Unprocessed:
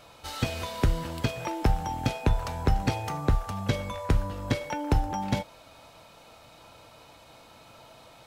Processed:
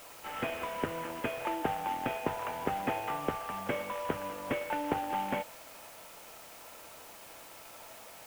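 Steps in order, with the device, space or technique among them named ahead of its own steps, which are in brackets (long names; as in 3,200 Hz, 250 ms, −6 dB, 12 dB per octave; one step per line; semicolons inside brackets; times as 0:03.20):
army field radio (band-pass filter 330–3,100 Hz; variable-slope delta modulation 16 kbit/s; white noise bed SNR 16 dB)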